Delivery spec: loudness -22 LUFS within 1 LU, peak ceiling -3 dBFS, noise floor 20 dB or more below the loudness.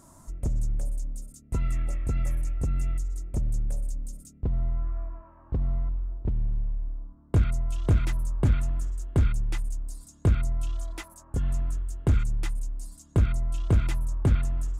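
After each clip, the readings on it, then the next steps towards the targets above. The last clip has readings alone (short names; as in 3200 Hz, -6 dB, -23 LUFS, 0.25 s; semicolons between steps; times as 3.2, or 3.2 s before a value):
loudness -29.5 LUFS; peak -14.5 dBFS; loudness target -22.0 LUFS
-> gain +7.5 dB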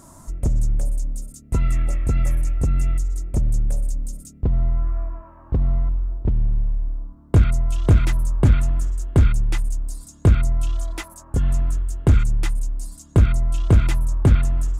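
loudness -22.0 LUFS; peak -7.0 dBFS; noise floor -46 dBFS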